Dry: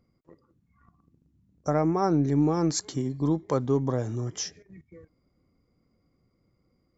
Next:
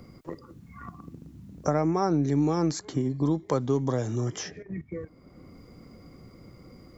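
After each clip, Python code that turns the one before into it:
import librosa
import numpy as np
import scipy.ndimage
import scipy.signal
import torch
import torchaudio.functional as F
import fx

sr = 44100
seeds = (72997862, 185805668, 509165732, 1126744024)

y = fx.band_squash(x, sr, depth_pct=70)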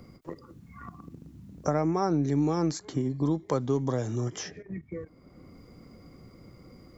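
y = fx.end_taper(x, sr, db_per_s=390.0)
y = y * librosa.db_to_amplitude(-1.5)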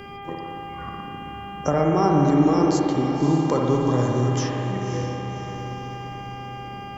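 y = fx.dmg_buzz(x, sr, base_hz=400.0, harmonics=8, level_db=-45.0, tilt_db=-4, odd_only=False)
y = fx.echo_diffused(y, sr, ms=566, feedback_pct=48, wet_db=-8.0)
y = fx.rev_spring(y, sr, rt60_s=2.2, pass_ms=(56,), chirp_ms=35, drr_db=0.0)
y = y * librosa.db_to_amplitude(4.5)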